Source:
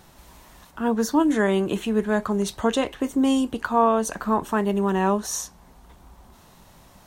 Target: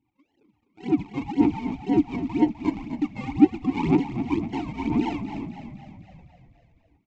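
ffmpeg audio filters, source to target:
-filter_complex "[0:a]afftfilt=real='real(if(lt(b,1008),b+24*(1-2*mod(floor(b/24),2)),b),0)':imag='imag(if(lt(b,1008),b+24*(1-2*mod(floor(b/24),2)),b),0)':win_size=2048:overlap=0.75,afftdn=nr=13:nf=-40,dynaudnorm=f=660:g=5:m=6dB,aresample=16000,acrusher=samples=19:mix=1:aa=0.000001:lfo=1:lforange=11.4:lforate=1.9,aresample=44100,aphaser=in_gain=1:out_gain=1:delay=1.9:decay=0.73:speed=2:type=sinusoidal,asplit=3[a][b][c];[a]bandpass=f=300:t=q:w=8,volume=0dB[d];[b]bandpass=f=870:t=q:w=8,volume=-6dB[e];[c]bandpass=f=2.24k:t=q:w=8,volume=-9dB[f];[d][e][f]amix=inputs=3:normalize=0,asplit=2[g][h];[h]asplit=7[i][j][k][l][m][n][o];[i]adelay=253,afreqshift=-33,volume=-10dB[p];[j]adelay=506,afreqshift=-66,volume=-14.6dB[q];[k]adelay=759,afreqshift=-99,volume=-19.2dB[r];[l]adelay=1012,afreqshift=-132,volume=-23.7dB[s];[m]adelay=1265,afreqshift=-165,volume=-28.3dB[t];[n]adelay=1518,afreqshift=-198,volume=-32.9dB[u];[o]adelay=1771,afreqshift=-231,volume=-37.5dB[v];[p][q][r][s][t][u][v]amix=inputs=7:normalize=0[w];[g][w]amix=inputs=2:normalize=0"

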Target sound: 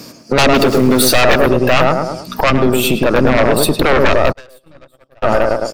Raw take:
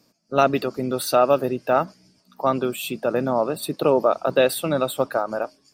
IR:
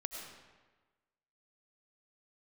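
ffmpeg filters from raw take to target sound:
-filter_complex "[0:a]asettb=1/sr,asplit=3[a][b][c];[a]atrim=end=0.584[d];[b]atrim=start=0.58:end=1.14,asetpts=PTS-STARTPTS,afade=t=in:d=0.004:c=qsin,afade=t=out:st=0.556:d=0.004:c=qsin,aeval=exprs='val(0)+0.5*0.015*sgn(val(0))':c=same[e];[c]atrim=start=1.136[f];[d][e]acrossfade=d=0.004:c1=hsin:c2=qsin[g];[g][f]acrossfade=d=0.004:c1=qsin:c2=hsin,highpass=64,asplit=2[h][i];[i]adelay=106,lowpass=f=1.5k:p=1,volume=-4.5dB,asplit=2[j][k];[k]adelay=106,lowpass=f=1.5k:p=1,volume=0.33,asplit=2[l][m];[m]adelay=106,lowpass=f=1.5k:p=1,volume=0.33,asplit=2[n][o];[o]adelay=106,lowpass=f=1.5k:p=1,volume=0.33[p];[h][j][l][n][p]amix=inputs=5:normalize=0,aeval=exprs='0.631*sin(PI/2*3.98*val(0)/0.631)':c=same,asettb=1/sr,asplit=3[q][r][s];[q]atrim=end=2.504[t];[r]atrim=start=2.5:end=3.06,asetpts=PTS-STARTPTS,afade=t=in:d=0.004:c=qsin,afade=t=out:st=0.556:d=0.004:c=qsin,acrossover=split=370[u][v];[v]acompressor=threshold=-17dB:ratio=6[w];[u][w]amix=inputs=2:normalize=0[x];[s]atrim=start=3.056[y];[t][x]acrossfade=d=0.004:c1=hsin:c2=qsin[z];[z][y]acrossfade=d=0.004:c1=qsin:c2=hsin,equalizer=f=760:w=2.4:g=-3,acompressor=threshold=-20dB:ratio=10,aeval=exprs='(tanh(4.47*val(0)+0.7)-tanh(0.7))/4.47':c=same,asplit=3[aa][ab][ac];[aa]afade=t=out:st=4.31:d=0.02[ad];[ab]agate=range=-45dB:threshold=-20dB:ratio=16:detection=peak,afade=t=in:st=4.31:d=0.02,afade=t=out:st=5.22:d=0.02[ae];[ac]afade=t=in:st=5.22:d=0.02[af];[ad][ae][af]amix=inputs=3:normalize=0,asubboost=boost=2.5:cutoff=100,alimiter=level_in=16.5dB:limit=-1dB:release=50:level=0:latency=1,volume=-1dB"

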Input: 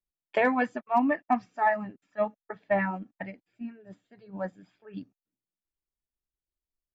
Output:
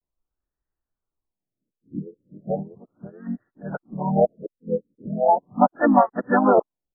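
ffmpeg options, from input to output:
-filter_complex "[0:a]areverse,asplit=3[a][b][c];[b]asetrate=35002,aresample=44100,atempo=1.25992,volume=-4dB[d];[c]asetrate=52444,aresample=44100,atempo=0.840896,volume=-10dB[e];[a][d][e]amix=inputs=3:normalize=0,afftfilt=real='re*lt(b*sr/1024,530*pow(2000/530,0.5+0.5*sin(2*PI*0.37*pts/sr)))':imag='im*lt(b*sr/1024,530*pow(2000/530,0.5+0.5*sin(2*PI*0.37*pts/sr)))':win_size=1024:overlap=0.75,volume=6.5dB"

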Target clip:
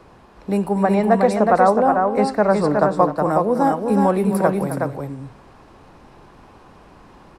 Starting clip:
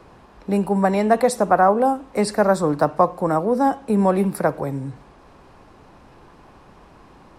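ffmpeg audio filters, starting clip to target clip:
-filter_complex "[0:a]asettb=1/sr,asplit=3[a][b][c];[a]atrim=end=0.834[d];[b]atrim=start=0.83:end=2.91,asetpts=PTS-STARTPTS,afade=t=in:d=0.004:c=qsin,afade=t=out:st=2.076:d=0.004:c=qsin,aemphasis=mode=reproduction:type=50fm[e];[c]atrim=start=2.906[f];[d][e]acrossfade=d=0.004:c1=hsin:c2=qsin[g];[g][f]acrossfade=d=0.004:c1=qsin:c2=hsin,aecho=1:1:258|367:0.251|0.631"

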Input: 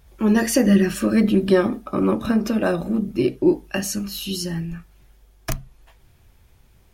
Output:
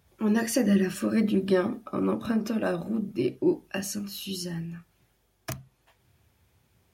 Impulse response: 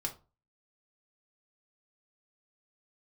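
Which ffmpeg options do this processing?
-af "highpass=f=75:w=0.5412,highpass=f=75:w=1.3066,volume=-7dB"

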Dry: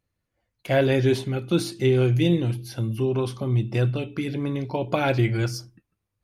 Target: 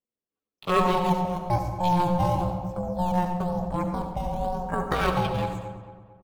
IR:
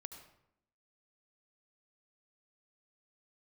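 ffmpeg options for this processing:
-filter_complex "[0:a]afwtdn=0.0224,acrossover=split=230|3000[a][b][c];[a]acompressor=threshold=-29dB:ratio=8[d];[d][b][c]amix=inputs=3:normalize=0,asplit=2[e][f];[f]acrusher=samples=14:mix=1:aa=0.000001:lfo=1:lforange=14:lforate=1,volume=-9dB[g];[e][g]amix=inputs=2:normalize=0,aeval=exprs='val(0)*sin(2*PI*260*n/s)':c=same,asetrate=60591,aresample=44100,atempo=0.727827,asplit=2[h][i];[i]adelay=225,lowpass=f=2.2k:p=1,volume=-11.5dB,asplit=2[j][k];[k]adelay=225,lowpass=f=2.2k:p=1,volume=0.46,asplit=2[l][m];[m]adelay=225,lowpass=f=2.2k:p=1,volume=0.46,asplit=2[n][o];[o]adelay=225,lowpass=f=2.2k:p=1,volume=0.46,asplit=2[p][q];[q]adelay=225,lowpass=f=2.2k:p=1,volume=0.46[r];[h][j][l][n][p][r]amix=inputs=6:normalize=0[s];[1:a]atrim=start_sample=2205[t];[s][t]afir=irnorm=-1:irlink=0,volume=4.5dB"

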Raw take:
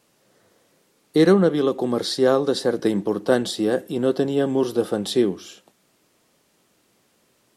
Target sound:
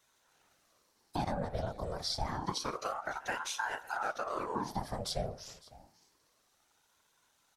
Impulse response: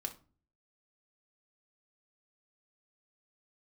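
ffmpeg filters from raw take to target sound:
-af "equalizer=f=500:t=o:w=0.33:g=-10,equalizer=f=3.15k:t=o:w=0.33:g=-11,equalizer=f=5k:t=o:w=0.33:g=9,acompressor=threshold=-24dB:ratio=4,afftfilt=real='hypot(re,im)*cos(2*PI*random(0))':imag='hypot(re,im)*sin(2*PI*random(1))':win_size=512:overlap=0.75,aecho=1:1:555:0.0944,aeval=exprs='val(0)*sin(2*PI*750*n/s+750*0.65/0.28*sin(2*PI*0.28*n/s))':c=same"

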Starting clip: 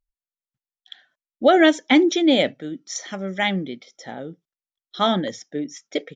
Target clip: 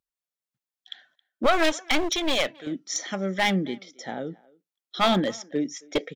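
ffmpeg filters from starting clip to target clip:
-filter_complex "[0:a]highpass=120,aeval=exprs='clip(val(0),-1,0.1)':c=same,asettb=1/sr,asplit=3[a][b][c];[a]atrim=end=1.464[d];[b]atrim=start=1.46:end=2.67,asetpts=PTS-STARTPTS,afade=t=in:d=0.004:c=qsin,afade=t=out:st=1.206:d=0.004:c=qsin,equalizer=f=190:t=o:w=2.8:g=-14[e];[c]atrim=start=2.666[f];[d][e]acrossfade=d=0.004:c1=hsin:c2=qsin[g];[g][f]acrossfade=d=0.004:c1=qsin:c2=hsin,asplit=2[h][i];[i]adelay=270,highpass=300,lowpass=3.4k,asoftclip=type=hard:threshold=-16.5dB,volume=-24dB[j];[h][j]amix=inputs=2:normalize=0,volume=1dB"

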